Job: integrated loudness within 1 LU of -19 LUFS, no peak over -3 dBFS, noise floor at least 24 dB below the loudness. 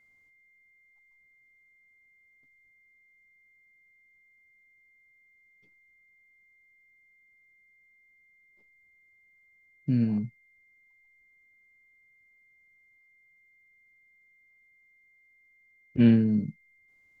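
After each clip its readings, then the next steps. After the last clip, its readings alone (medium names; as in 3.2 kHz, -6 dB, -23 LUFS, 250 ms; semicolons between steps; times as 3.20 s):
steady tone 2.1 kHz; tone level -61 dBFS; loudness -25.5 LUFS; peak level -10.0 dBFS; loudness target -19.0 LUFS
-> band-stop 2.1 kHz, Q 30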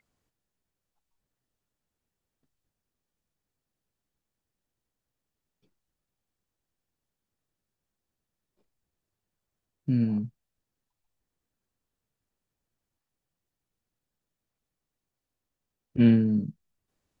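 steady tone not found; loudness -24.5 LUFS; peak level -10.0 dBFS; loudness target -19.0 LUFS
-> trim +5.5 dB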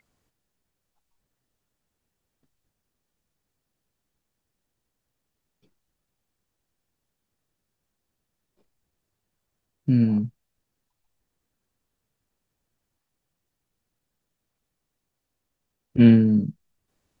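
loudness -19.0 LUFS; peak level -4.5 dBFS; noise floor -81 dBFS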